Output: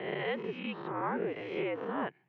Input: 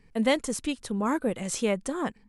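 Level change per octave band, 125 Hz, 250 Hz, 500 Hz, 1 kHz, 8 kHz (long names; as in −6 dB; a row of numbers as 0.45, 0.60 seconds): −6.5 dB, −10.5 dB, −5.5 dB, −3.5 dB, below −40 dB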